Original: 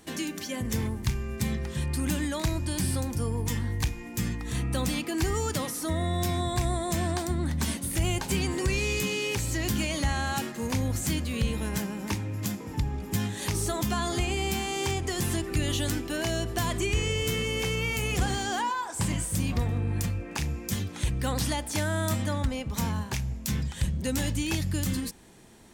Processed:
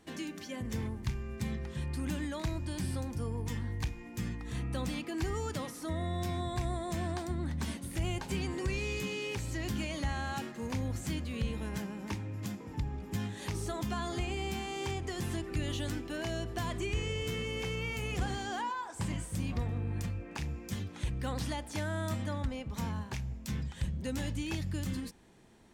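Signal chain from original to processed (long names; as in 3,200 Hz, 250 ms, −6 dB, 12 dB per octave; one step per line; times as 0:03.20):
low-pass filter 3,900 Hz 6 dB per octave
level −6.5 dB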